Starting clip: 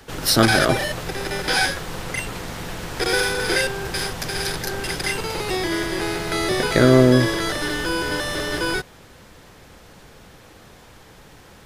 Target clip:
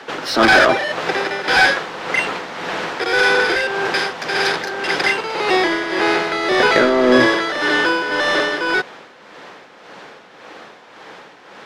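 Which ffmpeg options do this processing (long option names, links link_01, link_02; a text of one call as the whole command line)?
ffmpeg -i in.wav -filter_complex "[0:a]acrossover=split=160 6800:gain=0.1 1 0.2[link_01][link_02][link_03];[link_01][link_02][link_03]amix=inputs=3:normalize=0,asplit=2[link_04][link_05];[link_05]highpass=frequency=720:poles=1,volume=19dB,asoftclip=type=tanh:threshold=-1dB[link_06];[link_04][link_06]amix=inputs=2:normalize=0,lowpass=frequency=1900:poles=1,volume=-6dB,tremolo=f=1.8:d=0.57,volume=2dB" out.wav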